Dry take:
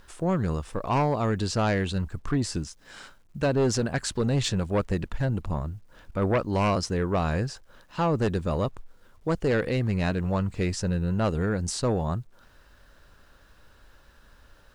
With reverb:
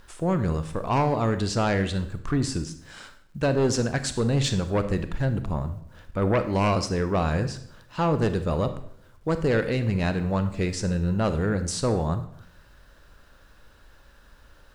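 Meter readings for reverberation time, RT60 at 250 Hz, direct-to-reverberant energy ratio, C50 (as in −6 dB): 0.65 s, 0.80 s, 9.5 dB, 11.5 dB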